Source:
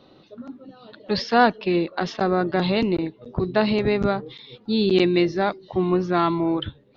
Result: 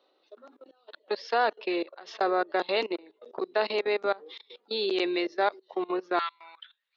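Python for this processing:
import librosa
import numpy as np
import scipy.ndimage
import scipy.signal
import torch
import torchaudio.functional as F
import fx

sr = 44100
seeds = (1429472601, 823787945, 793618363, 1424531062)

y = fx.level_steps(x, sr, step_db=22)
y = fx.highpass(y, sr, hz=fx.steps((0.0, 400.0), (6.19, 1400.0)), slope=24)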